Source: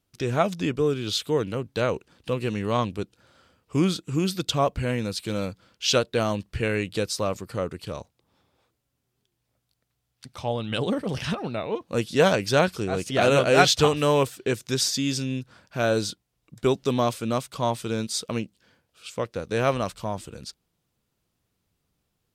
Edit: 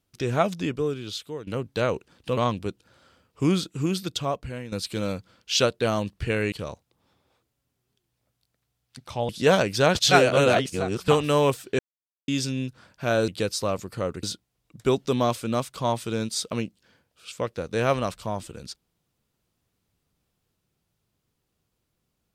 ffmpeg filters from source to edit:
-filter_complex "[0:a]asplit=12[a][b][c][d][e][f][g][h][i][j][k][l];[a]atrim=end=1.47,asetpts=PTS-STARTPTS,afade=t=out:st=0.44:d=1.03:silence=0.177828[m];[b]atrim=start=1.47:end=2.372,asetpts=PTS-STARTPTS,afade=t=in:d=0.004:c=hsin:silence=0.177828[n];[c]atrim=start=2.698:end=5.05,asetpts=PTS-STARTPTS,afade=t=out:st=1.342:d=1.01:silence=0.251189[o];[d]atrim=start=5.05:end=6.852,asetpts=PTS-STARTPTS,afade=t=in:d=0.004:c=hsin:silence=0.251189[p];[e]atrim=start=7.798:end=10.572[q];[f]atrim=start=12.018:end=12.682[r];[g]atrim=start=12.678:end=13.812,asetpts=PTS-STARTPTS,areverse[s];[h]atrim=start=13.808:end=14.52,asetpts=PTS-STARTPTS,afade=t=out:st=0.708:d=0.004:c=hsin[t];[i]atrim=start=14.52:end=15.01,asetpts=PTS-STARTPTS,volume=0[u];[j]atrim=start=15.01:end=16.012,asetpts=PTS-STARTPTS,afade=t=in:d=0.004:c=hsin[v];[k]atrim=start=6.848:end=7.802[w];[l]atrim=start=16.008[x];[m][n]concat=n=2:v=0:a=1[y];[o][p]concat=n=2:v=0:a=1[z];[y][z]acrossfade=d=0.004:c1=hsin:c2=hsin[aa];[aa][q]acrossfade=d=0.004:c1=hsin:c2=hsin[ab];[ab][r]acrossfade=d=0.004:c1=hsin:c2=hsin[ac];[ac][s]acrossfade=d=0.004:c1=hsin:c2=hsin[ad];[t][u][v]concat=n=3:v=0:a=1[ae];[ad][ae]acrossfade=d=0.004:c1=hsin:c2=hsin[af];[af][w]acrossfade=d=0.004:c1=hsin:c2=hsin[ag];[ag][x]acrossfade=d=0.004:c1=hsin:c2=hsin"

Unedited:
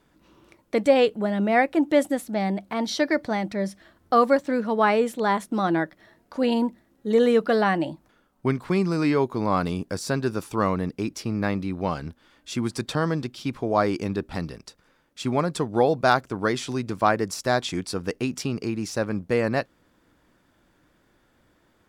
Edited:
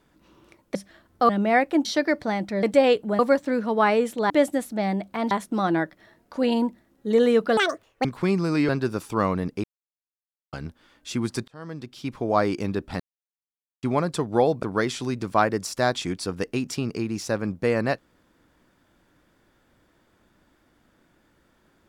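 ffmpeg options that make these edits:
-filter_complex "[0:a]asplit=17[a][b][c][d][e][f][g][h][i][j][k][l][m][n][o][p][q];[a]atrim=end=0.752[r];[b]atrim=start=3.658:end=4.202[s];[c]atrim=start=1.308:end=1.872[t];[d]atrim=start=2.878:end=3.662[u];[e]atrim=start=0.748:end=1.312[v];[f]atrim=start=4.198:end=5.312[w];[g]atrim=start=1.868:end=2.882[x];[h]atrim=start=5.308:end=7.574[y];[i]atrim=start=7.57:end=8.52,asetpts=PTS-STARTPTS,asetrate=87759,aresample=44100[z];[j]atrim=start=8.516:end=9.162[aa];[k]atrim=start=10.098:end=11.05,asetpts=PTS-STARTPTS,afade=t=out:st=0.948:d=0.004:c=hsin[ab];[l]atrim=start=11.05:end=11.94,asetpts=PTS-STARTPTS,volume=0[ac];[m]atrim=start=11.94:end=12.89,asetpts=PTS-STARTPTS,afade=t=in:d=0.004:c=hsin,afade=t=out:st=0.946:d=0.004:c=hsin[ad];[n]atrim=start=12.89:end=14.41,asetpts=PTS-STARTPTS,afade=t=in:d=0.8,afade=t=out:st=1.516:d=0.004:c=hsin[ae];[o]atrim=start=14.41:end=15.24,asetpts=PTS-STARTPTS,volume=0[af];[p]atrim=start=15.24:end=16.042,asetpts=PTS-STARTPTS,afade=t=in:d=0.004:c=hsin[ag];[q]atrim=start=16.298[ah];[r][s]acrossfade=d=0.004:c1=hsin:c2=hsin[ai];[ai][t]acrossfade=d=0.004:c1=hsin:c2=hsin[aj];[aj][u]acrossfade=d=0.004:c1=hsin:c2=hsin[ak];[ak][v]acrossfade=d=0.004:c1=hsin:c2=hsin[al];[al][w]acrossfade=d=0.004:c1=hsin:c2=hsin[am];[am][x]acrossfade=d=0.004:c1=hsin:c2=hsin[an];[an][y]acrossfade=d=0.004:c1=hsin:c2=hsin[ao];[ao][z]acrossfade=d=0.004:c1=hsin:c2=hsin[ap];[ap][aa]acrossfade=d=0.004:c1=hsin:c2=hsin[aq];[ab][ac][ad][ae][af][ag]concat=n=6:v=0:a=1[ar];[aq][ar]acrossfade=d=0.004:c1=hsin:c2=hsin[as];[as][ah]acrossfade=d=0.004:c1=hsin:c2=hsin"

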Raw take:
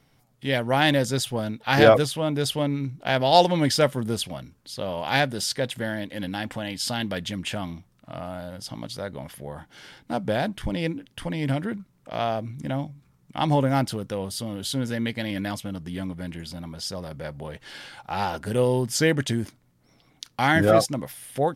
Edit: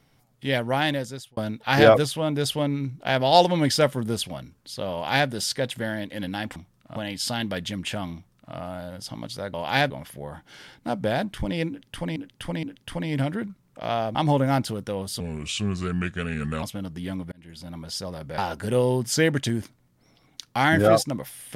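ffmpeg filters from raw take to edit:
-filter_complex "[0:a]asplit=13[a][b][c][d][e][f][g][h][i][j][k][l][m];[a]atrim=end=1.37,asetpts=PTS-STARTPTS,afade=t=out:st=0.57:d=0.8[n];[b]atrim=start=1.37:end=6.562,asetpts=PTS-STARTPTS,afade=t=in:d=0.004:c=hsin[o];[c]atrim=start=7.738:end=8.142[p];[d]atrim=start=6.558:end=9.142[q];[e]atrim=start=4.928:end=5.292[r];[f]atrim=start=9.138:end=11.402[s];[g]atrim=start=10.928:end=11.402[t];[h]atrim=start=10.928:end=12.452[u];[i]atrim=start=13.378:end=14.434[v];[j]atrim=start=14.43:end=15.53,asetpts=PTS-STARTPTS,asetrate=33957,aresample=44100[w];[k]atrim=start=15.526:end=16.22,asetpts=PTS-STARTPTS,afade=t=out:st=0.69:d=0.004:c=hsin[x];[l]atrim=start=16.22:end=17.282,asetpts=PTS-STARTPTS,afade=t=in:d=0.46[y];[m]atrim=start=18.208[z];[n][o]concat=n=2:v=0:a=1[aa];[aa][p]acrossfade=d=0.004:c1=hsin:c2=hsin[ab];[ab][q]acrossfade=d=0.004:c1=hsin:c2=hsin[ac];[ac][r]acrossfade=d=0.004:c1=hsin:c2=hsin[ad];[ad][s]acrossfade=d=0.004:c1=hsin:c2=hsin[ae];[ae][t]acrossfade=d=0.004:c1=hsin:c2=hsin[af];[af][u]acrossfade=d=0.004:c1=hsin:c2=hsin[ag];[ag][v]acrossfade=d=0.004:c1=hsin:c2=hsin[ah];[ah][w]acrossfade=d=0.004:c1=hsin:c2=hsin[ai];[x][y]concat=n=2:v=0:a=1[aj];[ai][aj]acrossfade=d=0.004:c1=hsin:c2=hsin[ak];[ak][z]acrossfade=d=0.004:c1=hsin:c2=hsin"

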